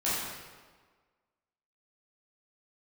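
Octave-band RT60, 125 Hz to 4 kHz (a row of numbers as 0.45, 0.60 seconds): 1.3, 1.4, 1.5, 1.5, 1.3, 1.1 seconds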